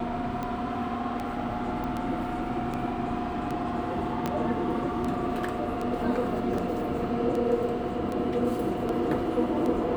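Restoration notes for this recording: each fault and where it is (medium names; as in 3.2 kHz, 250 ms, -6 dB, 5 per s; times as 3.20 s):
tick 78 rpm -20 dBFS
1.84 s: pop -23 dBFS
4.26 s: pop -14 dBFS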